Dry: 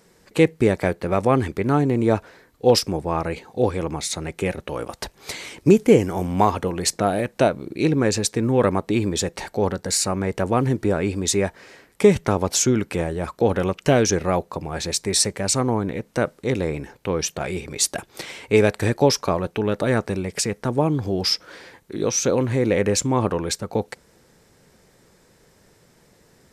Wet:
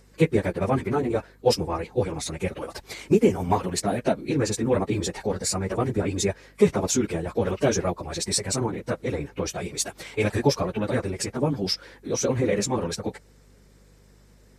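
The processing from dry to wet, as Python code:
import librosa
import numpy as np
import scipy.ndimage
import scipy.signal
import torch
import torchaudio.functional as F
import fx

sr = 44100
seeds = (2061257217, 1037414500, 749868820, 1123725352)

y = fx.spec_quant(x, sr, step_db=15)
y = fx.stretch_vocoder_free(y, sr, factor=0.55)
y = fx.add_hum(y, sr, base_hz=50, snr_db=30)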